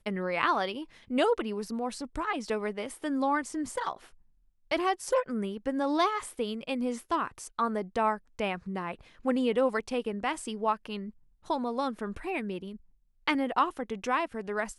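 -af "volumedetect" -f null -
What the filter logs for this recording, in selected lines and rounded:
mean_volume: -31.4 dB
max_volume: -10.3 dB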